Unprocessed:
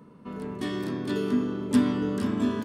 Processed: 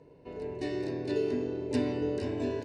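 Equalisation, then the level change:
Butterworth band-reject 3,300 Hz, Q 6
high-frequency loss of the air 110 metres
phaser with its sweep stopped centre 510 Hz, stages 4
+2.5 dB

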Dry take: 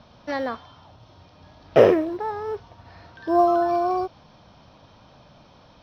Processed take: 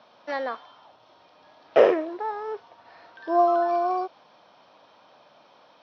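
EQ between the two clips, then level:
high-pass filter 450 Hz 12 dB per octave
high-frequency loss of the air 110 metres
0.0 dB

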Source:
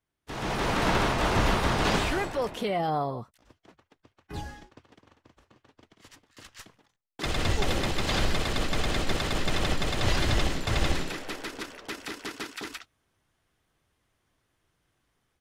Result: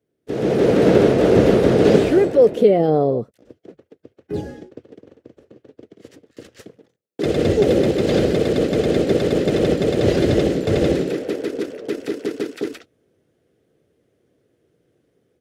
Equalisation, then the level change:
high-pass filter 130 Hz 12 dB per octave
low shelf with overshoot 690 Hz +13 dB, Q 3
parametric band 1,400 Hz +4.5 dB 1.3 octaves
−1.0 dB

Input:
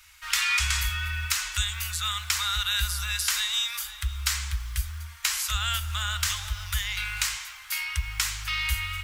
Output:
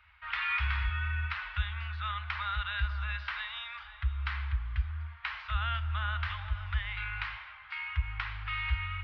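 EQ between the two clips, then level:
Gaussian smoothing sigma 3.7 samples
high-pass filter 49 Hz
0.0 dB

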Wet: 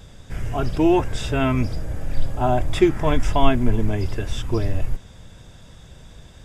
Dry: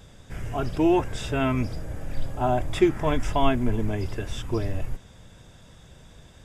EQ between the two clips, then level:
low-shelf EQ 89 Hz +5 dB
parametric band 4,400 Hz +2 dB
+3.0 dB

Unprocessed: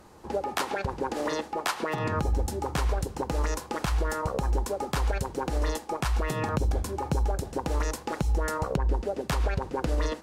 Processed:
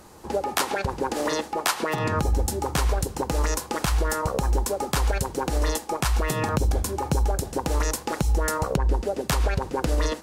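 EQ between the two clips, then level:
high-shelf EQ 5,500 Hz +8.5 dB
+3.5 dB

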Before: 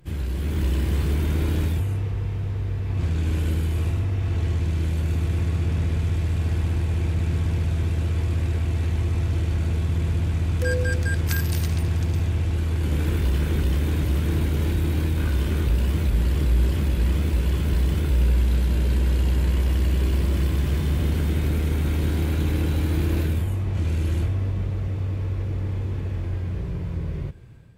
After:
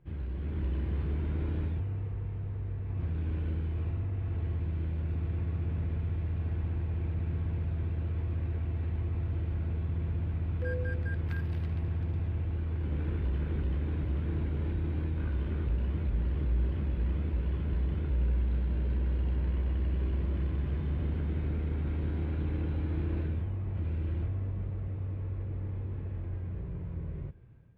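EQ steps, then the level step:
high-frequency loss of the air 480 metres
−9.0 dB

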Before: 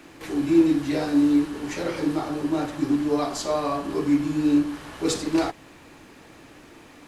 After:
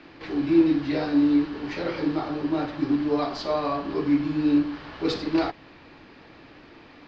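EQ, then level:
Chebyshev low-pass filter 4,800 Hz, order 4
0.0 dB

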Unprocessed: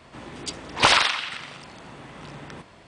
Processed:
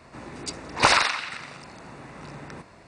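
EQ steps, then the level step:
parametric band 3,200 Hz −14 dB 0.24 octaves
0.0 dB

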